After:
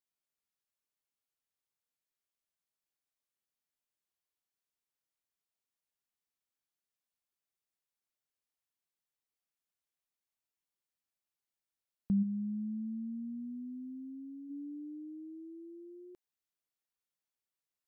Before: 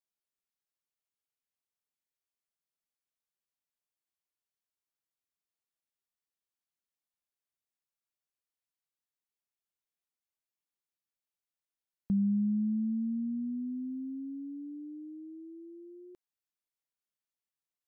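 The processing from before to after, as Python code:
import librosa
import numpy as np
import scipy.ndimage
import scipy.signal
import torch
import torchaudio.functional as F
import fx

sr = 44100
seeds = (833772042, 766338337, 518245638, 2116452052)

y = fx.low_shelf(x, sr, hz=310.0, db=-9.5, at=(12.22, 14.49), fade=0.02)
y = y * librosa.db_to_amplitude(-1.0)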